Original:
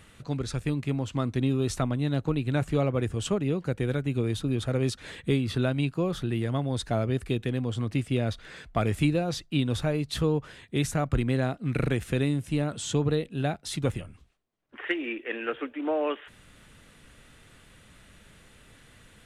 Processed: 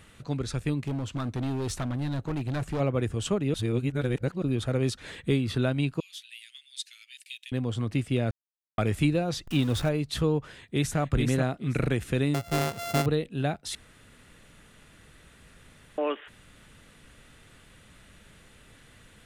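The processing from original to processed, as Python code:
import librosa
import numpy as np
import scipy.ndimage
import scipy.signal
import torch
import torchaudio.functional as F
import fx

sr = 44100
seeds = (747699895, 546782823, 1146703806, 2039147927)

y = fx.clip_hard(x, sr, threshold_db=-26.5, at=(0.8, 2.79), fade=0.02)
y = fx.steep_highpass(y, sr, hz=2400.0, slope=36, at=(6.0, 7.52))
y = fx.zero_step(y, sr, step_db=-35.0, at=(9.47, 9.89))
y = fx.echo_throw(y, sr, start_s=10.48, length_s=0.51, ms=430, feedback_pct=20, wet_db=-4.5)
y = fx.sample_sort(y, sr, block=64, at=(12.34, 13.06))
y = fx.edit(y, sr, fx.reverse_span(start_s=3.54, length_s=0.88),
    fx.silence(start_s=8.31, length_s=0.47),
    fx.room_tone_fill(start_s=13.75, length_s=2.23), tone=tone)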